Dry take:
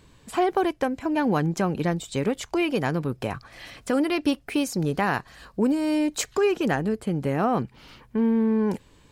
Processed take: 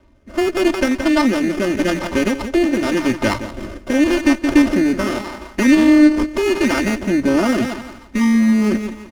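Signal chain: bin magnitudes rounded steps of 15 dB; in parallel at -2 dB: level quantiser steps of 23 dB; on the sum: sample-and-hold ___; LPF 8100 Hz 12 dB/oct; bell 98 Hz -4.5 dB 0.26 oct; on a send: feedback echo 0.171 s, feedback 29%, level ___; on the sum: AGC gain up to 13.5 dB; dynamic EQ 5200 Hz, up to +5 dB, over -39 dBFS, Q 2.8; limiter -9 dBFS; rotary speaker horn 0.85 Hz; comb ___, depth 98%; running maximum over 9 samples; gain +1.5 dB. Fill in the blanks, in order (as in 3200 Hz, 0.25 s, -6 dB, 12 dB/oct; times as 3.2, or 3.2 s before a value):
21×, -13.5 dB, 3.3 ms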